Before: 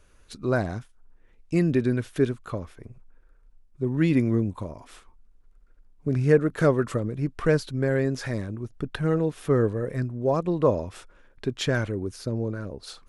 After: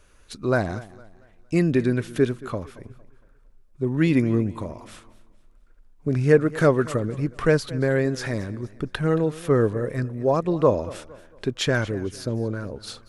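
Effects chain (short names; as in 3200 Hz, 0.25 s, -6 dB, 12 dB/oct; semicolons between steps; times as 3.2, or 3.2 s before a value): low shelf 420 Hz -3 dB; warbling echo 0.229 s, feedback 37%, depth 98 cents, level -19 dB; gain +4 dB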